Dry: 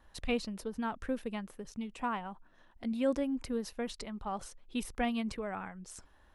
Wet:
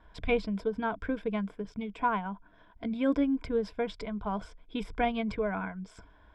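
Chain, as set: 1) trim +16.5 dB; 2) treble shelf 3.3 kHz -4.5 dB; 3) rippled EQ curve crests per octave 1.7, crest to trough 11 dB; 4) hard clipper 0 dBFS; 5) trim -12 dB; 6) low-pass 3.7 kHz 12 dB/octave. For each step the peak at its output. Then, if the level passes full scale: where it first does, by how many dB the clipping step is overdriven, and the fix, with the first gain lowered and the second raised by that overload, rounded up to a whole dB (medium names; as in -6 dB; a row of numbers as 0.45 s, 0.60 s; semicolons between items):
-2.5 dBFS, -3.0 dBFS, -4.5 dBFS, -4.5 dBFS, -16.5 dBFS, -16.5 dBFS; nothing clips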